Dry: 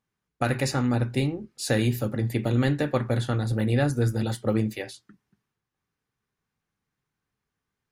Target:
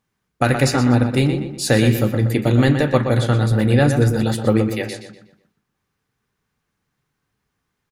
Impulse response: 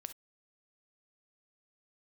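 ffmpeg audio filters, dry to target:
-filter_complex "[0:a]asplit=2[s0][s1];[s1]adelay=122,lowpass=f=4400:p=1,volume=0.422,asplit=2[s2][s3];[s3]adelay=122,lowpass=f=4400:p=1,volume=0.4,asplit=2[s4][s5];[s5]adelay=122,lowpass=f=4400:p=1,volume=0.4,asplit=2[s6][s7];[s7]adelay=122,lowpass=f=4400:p=1,volume=0.4,asplit=2[s8][s9];[s9]adelay=122,lowpass=f=4400:p=1,volume=0.4[s10];[s0][s2][s4][s6][s8][s10]amix=inputs=6:normalize=0,volume=2.51"

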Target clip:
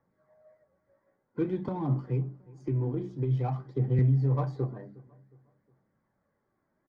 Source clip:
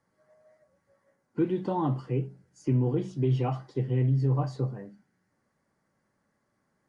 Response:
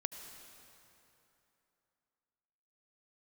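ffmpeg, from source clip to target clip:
-filter_complex "[0:a]aemphasis=mode=production:type=50fm,bandreject=f=50:t=h:w=6,bandreject=f=100:t=h:w=6,bandreject=f=150:t=h:w=6,bandreject=f=200:t=h:w=6,bandreject=f=250:t=h:w=6,bandreject=f=300:t=h:w=6,bandreject=f=350:t=h:w=6,asettb=1/sr,asplit=3[s0][s1][s2];[s0]atrim=end=1.684[s3];[s1]atrim=start=1.68:end=3.99,asetpts=PTS-STARTPTS,afade=t=in:d=0.004:c=qsin,afade=t=out:st=2.306:d=0.004:c=qsin,acrossover=split=180[s4][s5];[s5]acompressor=threshold=0.0251:ratio=6[s6];[s4][s6]amix=inputs=2:normalize=0[s7];[s2]atrim=start=3.986[s8];[s3][s7]acrossfade=d=0.004:c1=hsin:c2=qsin[s9];[s9][s8]acrossfade=d=0.004:c1=qsin:c2=hsin,aphaser=in_gain=1:out_gain=1:delay=3.3:decay=0.34:speed=0.52:type=triangular,adynamicsmooth=sensitivity=4.5:basefreq=1700,asuperstop=centerf=2800:order=4:qfactor=6.6,asplit=2[s10][s11];[s11]adelay=361,lowpass=f=2000:p=1,volume=0.0794,asplit=2[s12][s13];[s13]adelay=361,lowpass=f=2000:p=1,volume=0.4,asplit=2[s14][s15];[s15]adelay=361,lowpass=f=2000:p=1,volume=0.4[s16];[s10][s12][s14][s16]amix=inputs=4:normalize=0"

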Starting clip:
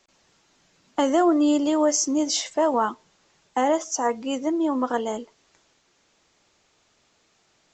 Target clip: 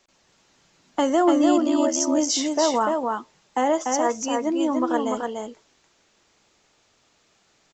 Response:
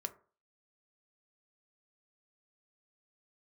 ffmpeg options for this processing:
-filter_complex "[0:a]asplit=3[s0][s1][s2];[s0]afade=t=out:st=1.56:d=0.02[s3];[s1]aeval=exprs='val(0)*sin(2*PI*37*n/s)':c=same,afade=t=in:st=1.56:d=0.02,afade=t=out:st=1.99:d=0.02[s4];[s2]afade=t=in:st=1.99:d=0.02[s5];[s3][s4][s5]amix=inputs=3:normalize=0,aecho=1:1:293:0.668"

